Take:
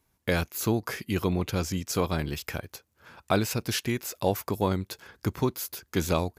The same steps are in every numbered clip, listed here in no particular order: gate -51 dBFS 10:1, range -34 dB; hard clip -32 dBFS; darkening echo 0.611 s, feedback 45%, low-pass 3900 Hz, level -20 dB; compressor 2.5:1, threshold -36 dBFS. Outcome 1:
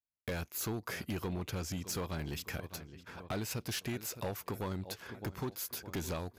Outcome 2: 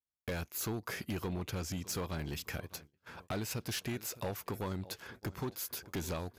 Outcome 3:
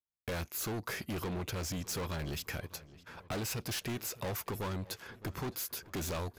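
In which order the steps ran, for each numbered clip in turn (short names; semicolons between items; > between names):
gate > darkening echo > compressor > hard clip; compressor > darkening echo > hard clip > gate; hard clip > gate > darkening echo > compressor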